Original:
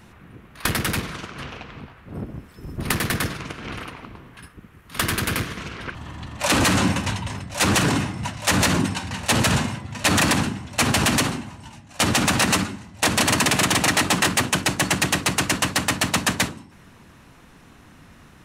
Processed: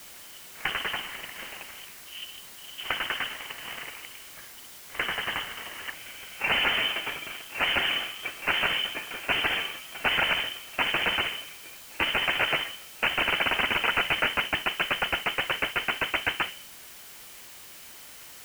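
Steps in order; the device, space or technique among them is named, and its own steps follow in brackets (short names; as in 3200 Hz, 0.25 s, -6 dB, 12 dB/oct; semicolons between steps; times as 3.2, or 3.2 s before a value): scrambled radio voice (BPF 300–2800 Hz; inverted band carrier 3300 Hz; white noise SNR 16 dB); gain -3 dB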